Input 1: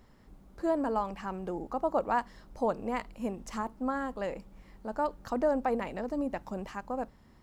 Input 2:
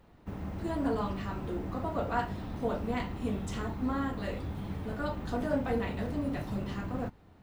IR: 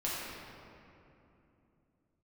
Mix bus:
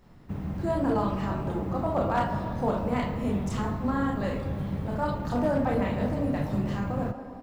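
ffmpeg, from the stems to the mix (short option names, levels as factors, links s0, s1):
-filter_complex "[0:a]volume=0.562,asplit=2[s0][s1];[s1]volume=0.668[s2];[1:a]equalizer=f=140:w=1.1:g=9,adelay=25,volume=1.06[s3];[2:a]atrim=start_sample=2205[s4];[s2][s4]afir=irnorm=-1:irlink=0[s5];[s0][s3][s5]amix=inputs=3:normalize=0,asoftclip=type=hard:threshold=0.133"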